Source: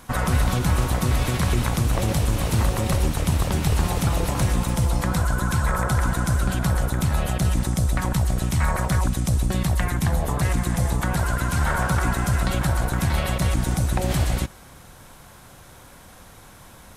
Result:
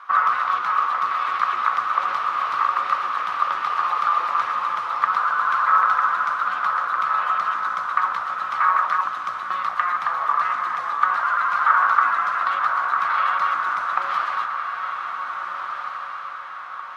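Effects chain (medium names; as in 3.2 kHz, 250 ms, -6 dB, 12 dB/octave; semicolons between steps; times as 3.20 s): resonant high-pass 1.2 kHz, resonance Q 13; distance through air 280 m; echo that smears into a reverb 1622 ms, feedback 45%, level -6 dB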